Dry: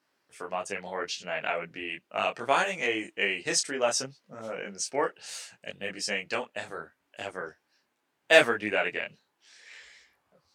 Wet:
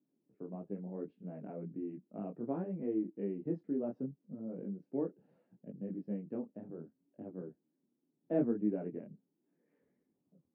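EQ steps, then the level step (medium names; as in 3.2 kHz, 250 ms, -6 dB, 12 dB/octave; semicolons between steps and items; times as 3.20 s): Butterworth band-pass 220 Hz, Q 1.3; distance through air 230 m; +5.5 dB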